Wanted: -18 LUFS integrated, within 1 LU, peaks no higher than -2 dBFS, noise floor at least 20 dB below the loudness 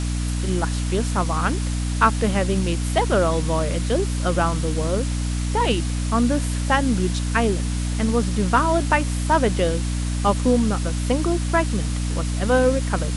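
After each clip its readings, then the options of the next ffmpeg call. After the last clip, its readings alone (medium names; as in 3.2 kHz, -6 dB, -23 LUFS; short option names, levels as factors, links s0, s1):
hum 60 Hz; highest harmonic 300 Hz; hum level -21 dBFS; noise floor -24 dBFS; noise floor target -42 dBFS; loudness -21.5 LUFS; peak level -3.0 dBFS; loudness target -18.0 LUFS
-> -af "bandreject=f=60:t=h:w=4,bandreject=f=120:t=h:w=4,bandreject=f=180:t=h:w=4,bandreject=f=240:t=h:w=4,bandreject=f=300:t=h:w=4"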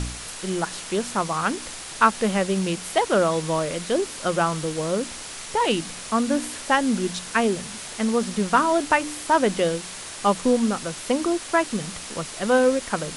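hum not found; noise floor -37 dBFS; noise floor target -44 dBFS
-> -af "afftdn=nr=7:nf=-37"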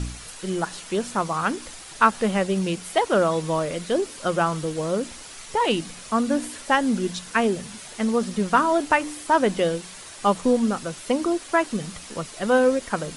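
noise floor -41 dBFS; noise floor target -44 dBFS
-> -af "afftdn=nr=6:nf=-41"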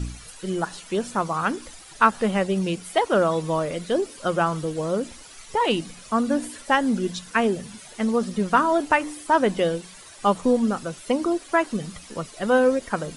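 noise floor -45 dBFS; loudness -23.5 LUFS; peak level -3.5 dBFS; loudness target -18.0 LUFS
-> -af "volume=1.88,alimiter=limit=0.794:level=0:latency=1"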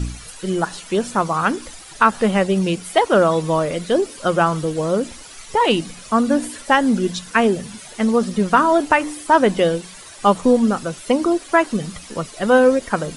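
loudness -18.5 LUFS; peak level -2.0 dBFS; noise floor -39 dBFS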